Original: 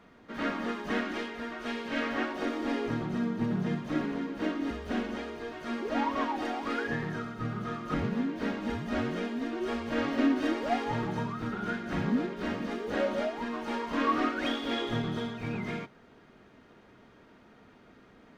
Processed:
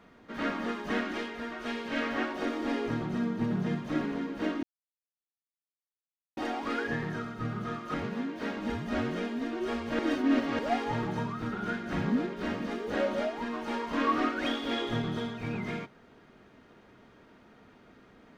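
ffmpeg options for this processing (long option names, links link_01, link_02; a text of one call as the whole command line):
ffmpeg -i in.wav -filter_complex "[0:a]asettb=1/sr,asplit=3[link_01][link_02][link_03];[link_01]atrim=end=7.794[link_04];[link_02]atrim=start=7.79:end=8.56,asetpts=PTS-STARTPTS,afade=type=in:duration=0.004:curve=qsin,afade=type=out:start_time=0.766:duration=0.004:curve=qsin,lowshelf=frequency=210:gain=-9[link_05];[link_03]atrim=start=8.556[link_06];[link_04][link_05]acrossfade=duration=0.004:curve1=hsin:curve2=qsin[link_07];[link_07][link_06]acrossfade=duration=0.004:curve1=qsin:curve2=hsin,asplit=5[link_08][link_09][link_10][link_11][link_12];[link_08]atrim=end=4.63,asetpts=PTS-STARTPTS,afade=type=out:start_time=4.626:duration=0.004:curve=hsin[link_13];[link_09]atrim=start=4.63:end=6.37,asetpts=PTS-STARTPTS,volume=0[link_14];[link_10]atrim=start=6.37:end=9.992,asetpts=PTS-STARTPTS,afade=type=in:duration=0.004:curve=hsin[link_15];[link_11]atrim=start=9.988:end=10.592,asetpts=PTS-STARTPTS,areverse[link_16];[link_12]atrim=start=10.588[link_17];[link_13][link_14][link_15]concat=n=3:v=0:a=1[link_18];[link_18][link_16]acrossfade=duration=0.004:curve1=hsin:curve2=hsin[link_19];[link_19][link_17]acrossfade=duration=0.004:curve1=hsin:curve2=hsin" out.wav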